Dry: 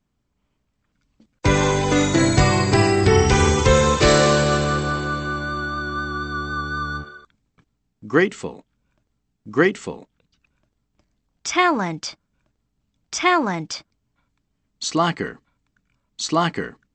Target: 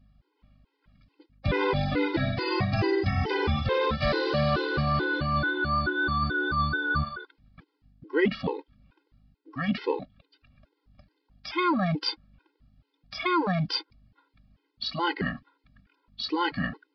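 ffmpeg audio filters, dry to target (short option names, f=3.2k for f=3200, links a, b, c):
-af "areverse,acompressor=threshold=-28dB:ratio=8,areverse,aeval=exprs='val(0)+0.000447*(sin(2*PI*50*n/s)+sin(2*PI*2*50*n/s)/2+sin(2*PI*3*50*n/s)/3+sin(2*PI*4*50*n/s)/4+sin(2*PI*5*50*n/s)/5)':c=same,aresample=11025,aresample=44100,afftfilt=real='re*gt(sin(2*PI*2.3*pts/sr)*(1-2*mod(floor(b*sr/1024/270),2)),0)':imag='im*gt(sin(2*PI*2.3*pts/sr)*(1-2*mod(floor(b*sr/1024/270),2)),0)':win_size=1024:overlap=0.75,volume=8dB"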